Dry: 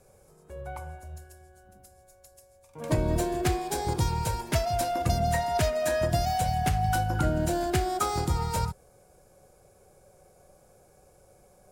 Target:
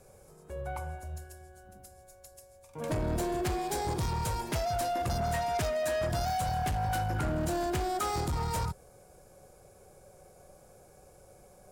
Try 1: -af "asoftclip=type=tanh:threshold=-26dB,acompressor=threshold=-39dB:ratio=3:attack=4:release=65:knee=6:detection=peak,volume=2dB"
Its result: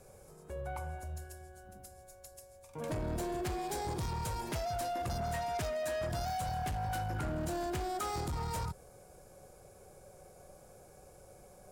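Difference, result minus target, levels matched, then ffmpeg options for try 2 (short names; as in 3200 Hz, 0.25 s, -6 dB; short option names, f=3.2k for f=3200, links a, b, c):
compressor: peak gain reduction +5.5 dB
-af "asoftclip=type=tanh:threshold=-26dB,acompressor=threshold=-30.5dB:ratio=3:attack=4:release=65:knee=6:detection=peak,volume=2dB"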